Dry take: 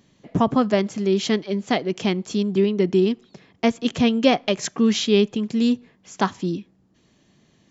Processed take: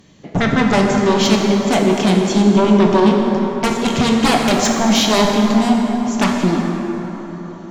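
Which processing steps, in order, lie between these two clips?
sine folder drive 12 dB, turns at -5 dBFS; plate-style reverb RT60 4.4 s, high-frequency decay 0.45×, DRR -0.5 dB; trim -7 dB

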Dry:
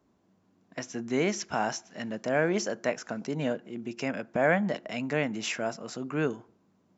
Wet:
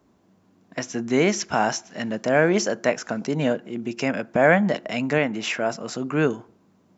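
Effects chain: 5.18–5.70 s: tone controls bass -4 dB, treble -7 dB; trim +7.5 dB

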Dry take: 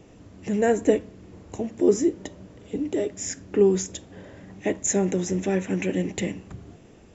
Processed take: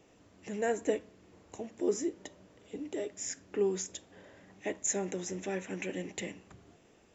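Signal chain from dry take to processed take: bass shelf 310 Hz -12 dB; trim -6.5 dB

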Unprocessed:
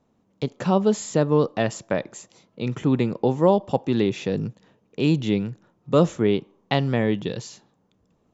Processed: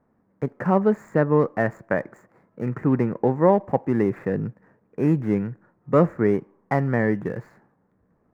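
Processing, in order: median filter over 15 samples; resonant high shelf 2.5 kHz -11.5 dB, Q 3

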